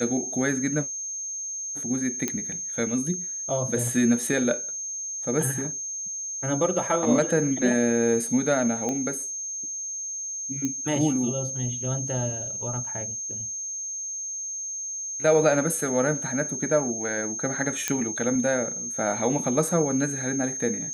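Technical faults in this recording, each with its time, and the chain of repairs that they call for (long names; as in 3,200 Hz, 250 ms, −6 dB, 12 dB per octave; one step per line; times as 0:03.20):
whistle 6,400 Hz −30 dBFS
0:02.28: click −11 dBFS
0:08.89: click −16 dBFS
0:10.65: click −15 dBFS
0:17.88: click −8 dBFS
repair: click removal
notch filter 6,400 Hz, Q 30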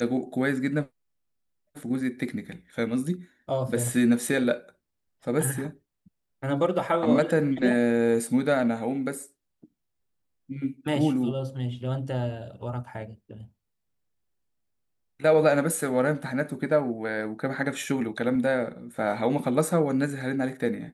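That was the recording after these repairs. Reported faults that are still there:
none of them is left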